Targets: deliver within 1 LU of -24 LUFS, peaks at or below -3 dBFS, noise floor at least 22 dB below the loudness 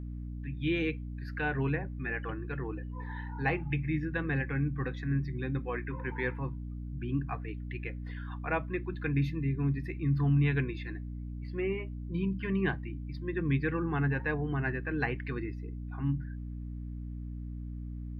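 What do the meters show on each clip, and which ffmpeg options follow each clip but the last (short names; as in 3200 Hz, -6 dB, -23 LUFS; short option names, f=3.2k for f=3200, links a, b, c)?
hum 60 Hz; harmonics up to 300 Hz; hum level -37 dBFS; loudness -34.0 LUFS; peak -16.5 dBFS; loudness target -24.0 LUFS
-> -af "bandreject=f=60:t=h:w=4,bandreject=f=120:t=h:w=4,bandreject=f=180:t=h:w=4,bandreject=f=240:t=h:w=4,bandreject=f=300:t=h:w=4"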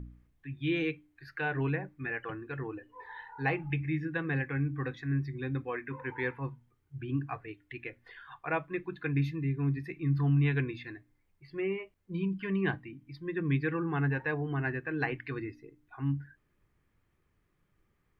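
hum none; loudness -33.5 LUFS; peak -17.0 dBFS; loudness target -24.0 LUFS
-> -af "volume=9.5dB"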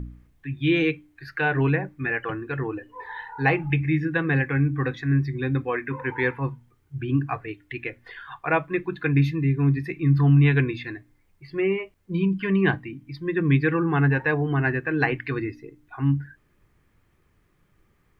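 loudness -24.0 LUFS; peak -7.5 dBFS; noise floor -65 dBFS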